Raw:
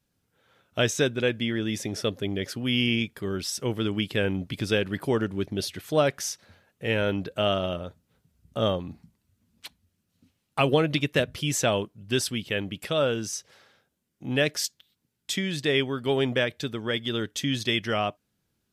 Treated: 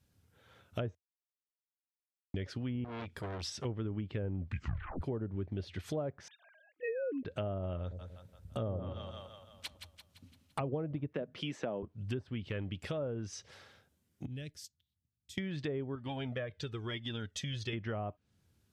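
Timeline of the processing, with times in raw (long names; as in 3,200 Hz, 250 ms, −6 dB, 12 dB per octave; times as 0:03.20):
0:00.95–0:02.34: silence
0:02.84–0:03.65: saturating transformer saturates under 2,600 Hz
0:04.39: tape stop 0.62 s
0:06.28–0:07.25: three sine waves on the formant tracks
0:07.82–0:10.60: echo with a time of its own for lows and highs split 640 Hz, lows 93 ms, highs 170 ms, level −9 dB
0:11.13–0:11.83: high-pass filter 180 Hz 24 dB per octave
0:12.47–0:13.09: de-essing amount 100%
0:14.26–0:15.38: guitar amp tone stack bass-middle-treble 10-0-1
0:15.95–0:17.73: flanger whose copies keep moving one way falling 1 Hz
whole clip: treble cut that deepens with the level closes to 800 Hz, closed at −21.5 dBFS; parametric band 84 Hz +11.5 dB 0.91 octaves; downward compressor 3 to 1, threshold −38 dBFS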